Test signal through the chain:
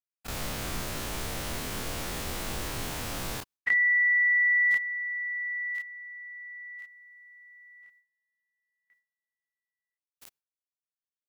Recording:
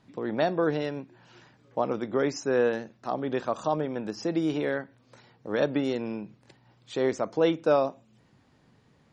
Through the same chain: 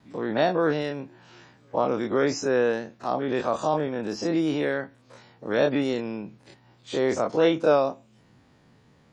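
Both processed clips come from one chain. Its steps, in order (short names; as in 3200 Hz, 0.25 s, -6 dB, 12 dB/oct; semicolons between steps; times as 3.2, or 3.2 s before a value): spectral dilation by 60 ms; gate with hold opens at -58 dBFS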